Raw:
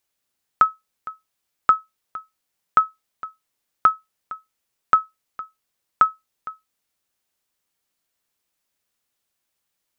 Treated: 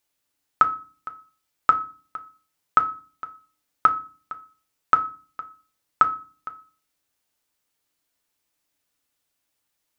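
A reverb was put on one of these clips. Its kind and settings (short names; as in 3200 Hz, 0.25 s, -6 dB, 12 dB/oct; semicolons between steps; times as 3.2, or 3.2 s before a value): FDN reverb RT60 0.37 s, low-frequency decay 1.55×, high-frequency decay 0.8×, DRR 6.5 dB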